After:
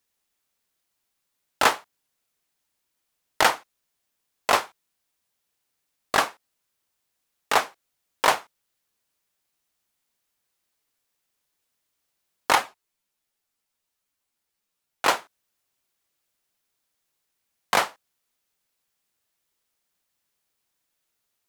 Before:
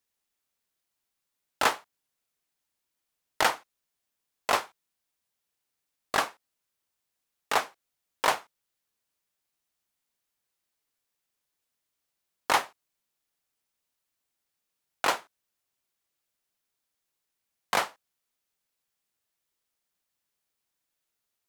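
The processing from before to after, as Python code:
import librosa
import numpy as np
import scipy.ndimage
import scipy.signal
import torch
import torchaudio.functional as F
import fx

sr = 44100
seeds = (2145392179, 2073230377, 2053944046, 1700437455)

y = fx.ensemble(x, sr, at=(12.55, 15.05))
y = F.gain(torch.from_numpy(y), 5.0).numpy()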